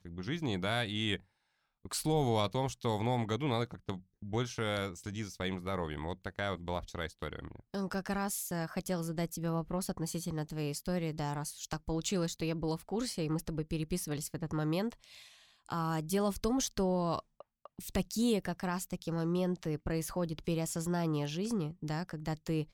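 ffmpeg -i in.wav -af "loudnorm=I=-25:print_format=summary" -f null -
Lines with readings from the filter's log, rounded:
Input Integrated:    -35.6 LUFS
Input True Peak:     -16.2 dBTP
Input LRA:             3.5 LU
Input Threshold:     -45.8 LUFS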